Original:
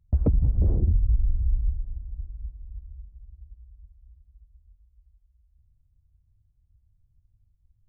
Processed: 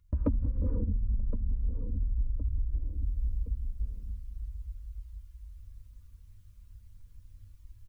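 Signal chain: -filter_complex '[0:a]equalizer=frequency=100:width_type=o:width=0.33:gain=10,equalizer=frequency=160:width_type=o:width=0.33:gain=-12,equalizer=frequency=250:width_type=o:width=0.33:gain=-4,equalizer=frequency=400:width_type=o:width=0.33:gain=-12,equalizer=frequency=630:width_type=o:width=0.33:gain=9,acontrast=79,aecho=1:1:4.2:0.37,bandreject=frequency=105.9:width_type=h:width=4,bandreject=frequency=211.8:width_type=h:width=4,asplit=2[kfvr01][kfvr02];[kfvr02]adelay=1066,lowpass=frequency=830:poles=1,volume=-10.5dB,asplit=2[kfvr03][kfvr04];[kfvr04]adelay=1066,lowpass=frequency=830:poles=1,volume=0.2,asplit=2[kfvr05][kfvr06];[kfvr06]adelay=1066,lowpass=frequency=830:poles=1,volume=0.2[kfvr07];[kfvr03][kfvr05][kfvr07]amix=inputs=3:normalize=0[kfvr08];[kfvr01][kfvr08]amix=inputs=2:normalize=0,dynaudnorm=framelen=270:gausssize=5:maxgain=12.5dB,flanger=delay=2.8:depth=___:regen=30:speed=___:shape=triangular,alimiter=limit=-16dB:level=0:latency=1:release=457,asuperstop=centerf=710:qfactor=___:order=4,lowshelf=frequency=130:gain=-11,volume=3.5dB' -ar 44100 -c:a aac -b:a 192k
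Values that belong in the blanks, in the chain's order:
2.3, 0.38, 1.8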